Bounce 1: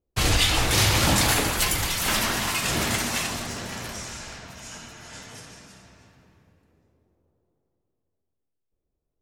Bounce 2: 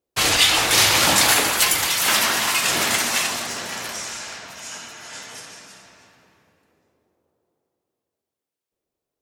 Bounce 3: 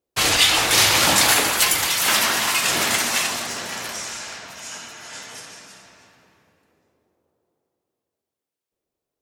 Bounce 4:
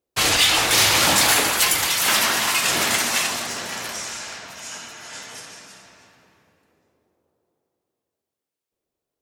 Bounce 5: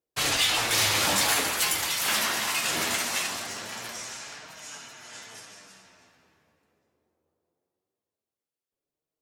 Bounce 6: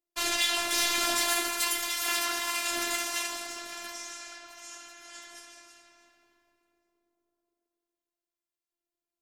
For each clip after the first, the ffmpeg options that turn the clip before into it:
-af "highpass=f=610:p=1,volume=2.11"
-af anull
-af "volume=3.35,asoftclip=hard,volume=0.299"
-af "flanger=delay=6.2:depth=8.1:regen=53:speed=0.22:shape=triangular,volume=0.708"
-af "afftfilt=real='hypot(re,im)*cos(PI*b)':imag='0':win_size=512:overlap=0.75"

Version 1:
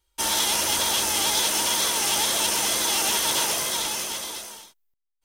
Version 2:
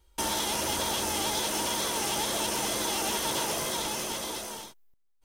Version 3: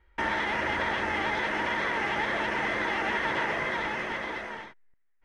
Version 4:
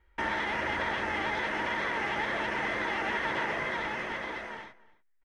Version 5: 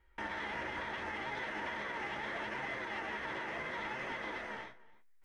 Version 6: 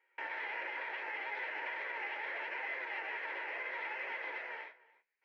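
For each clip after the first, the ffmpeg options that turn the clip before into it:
-af "acompressor=threshold=0.01:ratio=2,tiltshelf=f=970:g=5,volume=2.24"
-af "lowpass=f=1900:t=q:w=5.3"
-filter_complex "[0:a]asplit=2[s0][s1];[s1]adelay=291.5,volume=0.0891,highshelf=f=4000:g=-6.56[s2];[s0][s2]amix=inputs=2:normalize=0,volume=0.75"
-af "alimiter=level_in=1.78:limit=0.0631:level=0:latency=1:release=131,volume=0.562,areverse,acompressor=mode=upward:threshold=0.00126:ratio=2.5,areverse,flanger=delay=7.3:depth=8.9:regen=60:speed=0.74:shape=sinusoidal,volume=1.26"
-af "highpass=f=460:w=0.5412,highpass=f=460:w=1.3066,equalizer=f=680:t=q:w=4:g=-6,equalizer=f=1200:t=q:w=4:g=-9,equalizer=f=2400:t=q:w=4:g=6,equalizer=f=3500:t=q:w=4:g=-10,lowpass=f=4000:w=0.5412,lowpass=f=4000:w=1.3066,volume=1.12"

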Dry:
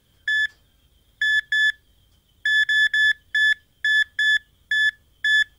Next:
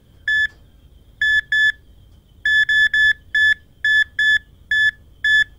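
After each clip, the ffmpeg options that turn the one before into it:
-af "tiltshelf=f=1100:g=6.5,volume=2.11"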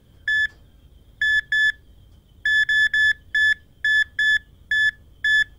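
-af "acontrast=40,volume=0.398"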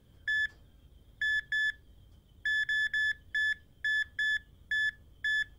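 -af "alimiter=limit=0.133:level=0:latency=1:release=11,volume=0.422"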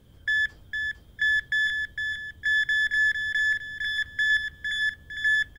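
-af "aecho=1:1:456|912|1368|1824|2280:0.531|0.212|0.0849|0.034|0.0136,volume=2"

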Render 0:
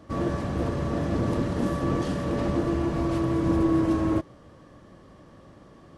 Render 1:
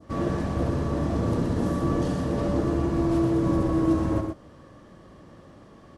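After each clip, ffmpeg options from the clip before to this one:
-af "adynamicequalizer=threshold=0.00447:dfrequency=2400:dqfactor=0.79:tfrequency=2400:tqfactor=0.79:attack=5:release=100:ratio=0.375:range=2.5:mode=cutabove:tftype=bell,aecho=1:1:66|123:0.316|0.501"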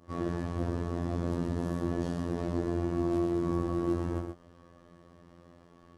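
-af "afftfilt=real='hypot(re,im)*cos(PI*b)':imag='0':win_size=2048:overlap=0.75,volume=0.631"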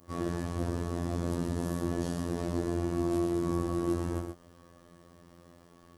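-af "aemphasis=mode=production:type=50fm"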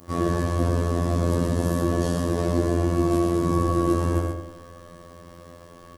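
-filter_complex "[0:a]asplit=2[s0][s1];[s1]asoftclip=type=tanh:threshold=0.0631,volume=0.473[s2];[s0][s2]amix=inputs=2:normalize=0,asplit=2[s3][s4];[s4]adelay=91,lowpass=f=2400:p=1,volume=0.562,asplit=2[s5][s6];[s6]adelay=91,lowpass=f=2400:p=1,volume=0.52,asplit=2[s7][s8];[s8]adelay=91,lowpass=f=2400:p=1,volume=0.52,asplit=2[s9][s10];[s10]adelay=91,lowpass=f=2400:p=1,volume=0.52,asplit=2[s11][s12];[s12]adelay=91,lowpass=f=2400:p=1,volume=0.52,asplit=2[s13][s14];[s14]adelay=91,lowpass=f=2400:p=1,volume=0.52,asplit=2[s15][s16];[s16]adelay=91,lowpass=f=2400:p=1,volume=0.52[s17];[s3][s5][s7][s9][s11][s13][s15][s17]amix=inputs=8:normalize=0,volume=2.24"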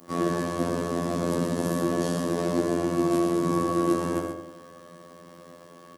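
-af "aeval=exprs='0.473*(cos(1*acos(clip(val(0)/0.473,-1,1)))-cos(1*PI/2))+0.0266*(cos(3*acos(clip(val(0)/0.473,-1,1)))-cos(3*PI/2))':c=same,highpass=f=140:w=0.5412,highpass=f=140:w=1.3066"

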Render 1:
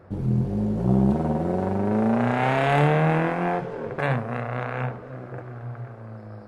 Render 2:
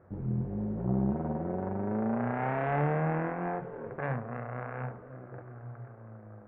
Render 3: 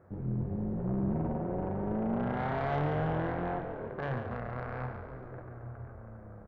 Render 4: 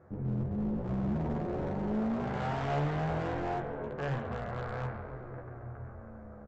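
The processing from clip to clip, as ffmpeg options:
-af "lowpass=f=2000:w=0.5412,lowpass=f=2000:w=1.3066,volume=0.355"
-filter_complex "[0:a]aeval=exprs='(tanh(17.8*val(0)+0.25)-tanh(0.25))/17.8':c=same,asplit=9[s0][s1][s2][s3][s4][s5][s6][s7][s8];[s1]adelay=141,afreqshift=-37,volume=0.422[s9];[s2]adelay=282,afreqshift=-74,volume=0.248[s10];[s3]adelay=423,afreqshift=-111,volume=0.146[s11];[s4]adelay=564,afreqshift=-148,volume=0.0871[s12];[s5]adelay=705,afreqshift=-185,volume=0.0513[s13];[s6]adelay=846,afreqshift=-222,volume=0.0302[s14];[s7]adelay=987,afreqshift=-259,volume=0.0178[s15];[s8]adelay=1128,afreqshift=-296,volume=0.0105[s16];[s0][s9][s10][s11][s12][s13][s14][s15][s16]amix=inputs=9:normalize=0"
-filter_complex "[0:a]aresample=16000,asoftclip=type=hard:threshold=0.0299,aresample=44100,asplit=2[s0][s1];[s1]adelay=14,volume=0.596[s2];[s0][s2]amix=inputs=2:normalize=0"

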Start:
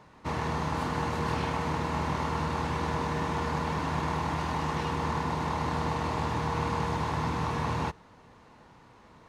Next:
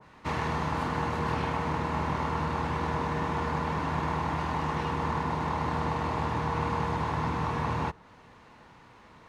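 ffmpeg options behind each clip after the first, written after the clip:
-filter_complex "[0:a]acrossover=split=550|2900[s0][s1][s2];[s1]crystalizer=i=5:c=0[s3];[s0][s3][s2]amix=inputs=3:normalize=0,adynamicequalizer=threshold=0.00708:dfrequency=1600:dqfactor=0.7:tfrequency=1600:tqfactor=0.7:attack=5:release=100:ratio=0.375:range=3:mode=cutabove:tftype=highshelf"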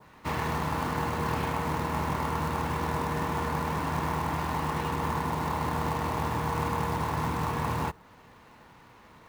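-af "acrusher=bits=4:mode=log:mix=0:aa=0.000001"

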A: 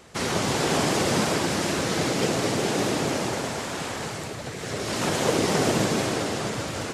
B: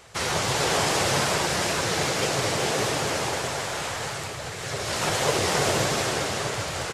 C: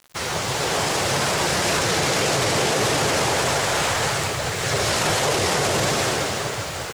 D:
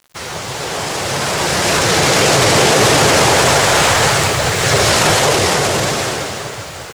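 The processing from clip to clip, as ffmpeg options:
-af "equalizer=f=250:w=1.2:g=-12.5,flanger=delay=6.9:depth=7.1:regen=68:speed=1.7:shape=sinusoidal,aecho=1:1:392:0.316,volume=2.11"
-af "dynaudnorm=f=380:g=9:m=3.76,acrusher=bits=6:mix=0:aa=0.000001,alimiter=limit=0.251:level=0:latency=1:release=13"
-af "dynaudnorm=f=250:g=13:m=3.98"

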